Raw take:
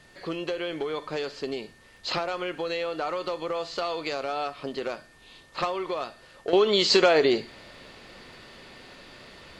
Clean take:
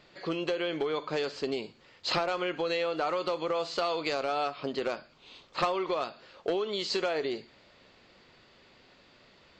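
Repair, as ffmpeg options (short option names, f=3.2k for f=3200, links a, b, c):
-af "adeclick=t=4,bandreject=f=1.8k:w=30,agate=range=-21dB:threshold=-45dB,asetnsamples=n=441:p=0,asendcmd='6.53 volume volume -11dB',volume=0dB"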